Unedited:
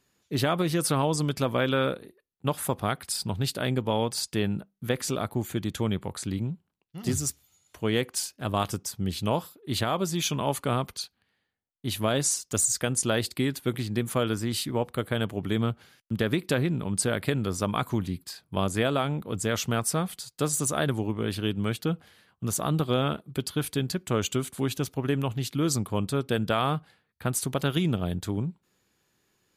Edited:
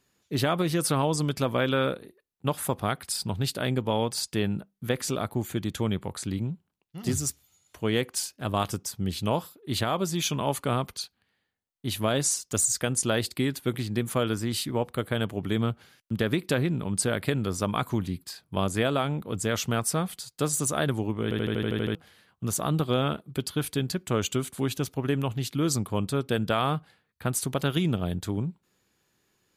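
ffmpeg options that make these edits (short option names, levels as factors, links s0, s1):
-filter_complex "[0:a]asplit=10[s0][s1][s2][s3][s4][s5][s6][s7][s8][s9];[s0]atrim=end=21.312[s10];[s1]atrim=start=21.228:end=21.312[s11];[s2]atrim=start=21.228:end=21.312[s12];[s3]atrim=start=21.228:end=21.312[s13];[s4]atrim=start=21.228:end=21.312[s14];[s5]atrim=start=21.228:end=21.312[s15];[s6]atrim=start=21.228:end=21.312[s16];[s7]atrim=start=21.228:end=21.312[s17];[s8]atrim=start=21.228:end=21.312[s18];[s9]atrim=start=21.948[s19];[s10][s11]acrossfade=d=0.004:c1=hsin:c2=hsin[s20];[s20][s12]acrossfade=d=0.004:c1=hsin:c2=hsin[s21];[s21][s13]acrossfade=d=0.004:c1=hsin:c2=hsin[s22];[s22][s14]acrossfade=d=0.004:c1=hsin:c2=hsin[s23];[s23][s15]acrossfade=d=0.004:c1=hsin:c2=hsin[s24];[s24][s16]acrossfade=d=0.004:c1=hsin:c2=hsin[s25];[s25][s17]acrossfade=d=0.004:c1=hsin:c2=hsin[s26];[s26][s18]acrossfade=d=0.004:c1=hsin:c2=hsin[s27];[s27][s19]acrossfade=d=0.004:c1=hsin:c2=hsin"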